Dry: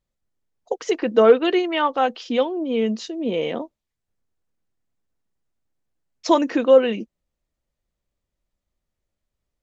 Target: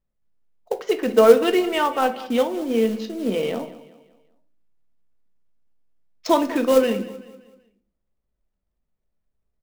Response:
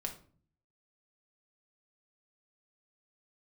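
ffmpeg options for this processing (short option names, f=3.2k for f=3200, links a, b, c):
-filter_complex "[0:a]adynamicsmooth=sensitivity=4.5:basefreq=2.2k,acrusher=bits=5:mode=log:mix=0:aa=0.000001,aecho=1:1:191|382|573|764:0.141|0.0593|0.0249|0.0105,asplit=2[a][b];[1:a]atrim=start_sample=2205[c];[b][c]afir=irnorm=-1:irlink=0,volume=3.5dB[d];[a][d]amix=inputs=2:normalize=0,volume=-7.5dB"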